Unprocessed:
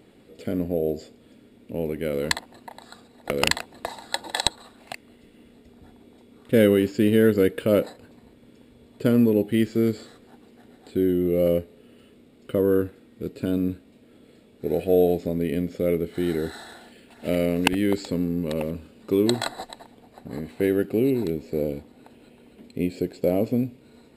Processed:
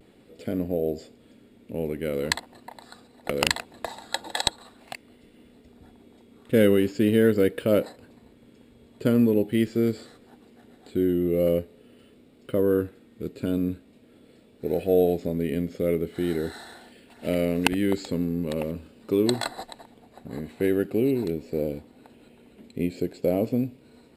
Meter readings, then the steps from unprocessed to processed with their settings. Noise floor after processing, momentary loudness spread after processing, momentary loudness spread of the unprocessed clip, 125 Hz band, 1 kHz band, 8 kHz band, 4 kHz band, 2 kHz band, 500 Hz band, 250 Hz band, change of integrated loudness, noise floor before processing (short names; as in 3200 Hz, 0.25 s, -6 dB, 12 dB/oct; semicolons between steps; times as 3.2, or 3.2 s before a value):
-56 dBFS, 17 LU, 17 LU, -1.5 dB, -1.5 dB, -1.5 dB, -1.5 dB, -1.5 dB, -1.5 dB, -1.5 dB, -1.5 dB, -54 dBFS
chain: vibrato 0.43 Hz 28 cents; gain -1.5 dB